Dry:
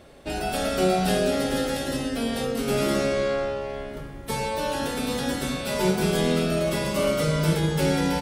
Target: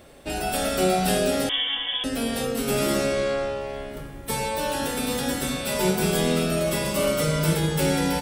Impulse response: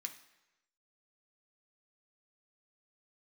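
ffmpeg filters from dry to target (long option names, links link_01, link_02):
-filter_complex "[0:a]asplit=2[link_01][link_02];[link_02]aemphasis=mode=production:type=bsi[link_03];[1:a]atrim=start_sample=2205[link_04];[link_03][link_04]afir=irnorm=-1:irlink=0,volume=-8dB[link_05];[link_01][link_05]amix=inputs=2:normalize=0,asettb=1/sr,asplit=3[link_06][link_07][link_08];[link_06]atrim=end=1.494[link_09];[link_07]atrim=start=1.49:end=2.04,asetpts=PTS-STARTPTS,afade=type=in:duration=0.004:curve=qsin,afade=type=out:start_time=0.546:duration=0.004:curve=qsin,lowpass=frequency=3100:width_type=q:width=0.5098,lowpass=frequency=3100:width_type=q:width=0.6013,lowpass=frequency=3100:width_type=q:width=0.9,lowpass=frequency=3100:width_type=q:width=2.563,afreqshift=-3600[link_10];[link_08]atrim=start=2.036[link_11];[link_09][link_10]acrossfade=duration=0.004:curve1=hsin:curve2=qsin[link_12];[link_12][link_11]acrossfade=duration=0.004:curve1=qsin:curve2=hsin"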